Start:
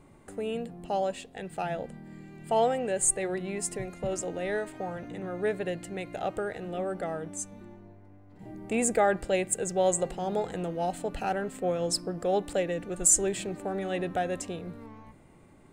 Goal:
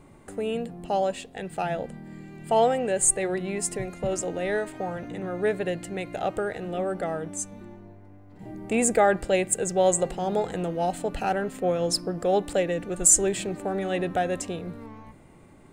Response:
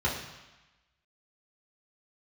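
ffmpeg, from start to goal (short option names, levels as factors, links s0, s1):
-filter_complex "[0:a]asettb=1/sr,asplit=3[s0][s1][s2];[s0]atrim=end=11.434[s3];[s1]atrim=start=11.43:end=12.15,asetpts=PTS-STARTPTS,afade=t=in:d=0.004:c=qsin,afade=t=out:st=0.716:d=0.004:c=qsin,bandreject=f=8000:w=6.8[s4];[s2]atrim=start=12.146[s5];[s3][s4]acrossfade=d=0.004:c1=hsin:c2=qsin[s6];[s6][s5]acrossfade=d=0.004:c1=qsin:c2=hsin,volume=1.58"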